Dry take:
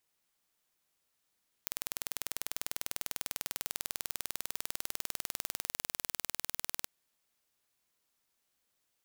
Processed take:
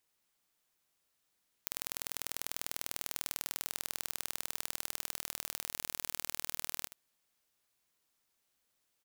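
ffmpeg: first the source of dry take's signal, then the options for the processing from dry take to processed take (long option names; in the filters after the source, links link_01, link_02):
-f lavfi -i "aevalsrc='0.422*eq(mod(n,2194),0)':duration=5.18:sample_rate=44100"
-af "aecho=1:1:77:0.224"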